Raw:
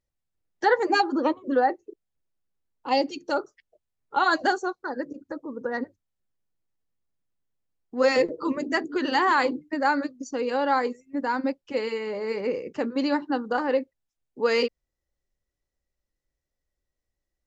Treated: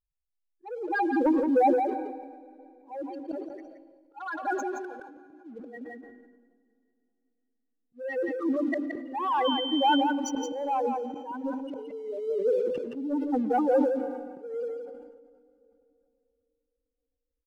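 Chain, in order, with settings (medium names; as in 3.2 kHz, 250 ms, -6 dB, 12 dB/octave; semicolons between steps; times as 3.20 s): spectral contrast enhancement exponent 3.8; 4.27–5.09 s: high-pass 660 Hz 6 dB/octave; low-pass that closes with the level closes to 2.6 kHz, closed at -21.5 dBFS; waveshaping leveller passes 1; slow attack 688 ms; delay 171 ms -7 dB; 9.44–10.00 s: whistle 3.1 kHz -29 dBFS; reverberation RT60 3.0 s, pre-delay 102 ms, DRR 18 dB; decay stretcher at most 40 dB/s; trim -2 dB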